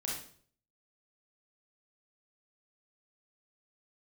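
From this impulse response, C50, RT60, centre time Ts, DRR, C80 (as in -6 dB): 1.5 dB, 0.50 s, 46 ms, -4.0 dB, 7.0 dB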